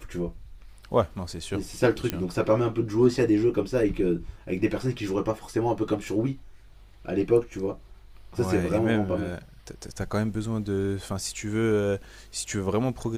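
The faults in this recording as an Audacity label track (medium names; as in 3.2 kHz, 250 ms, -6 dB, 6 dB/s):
2.100000	2.100000	pop -11 dBFS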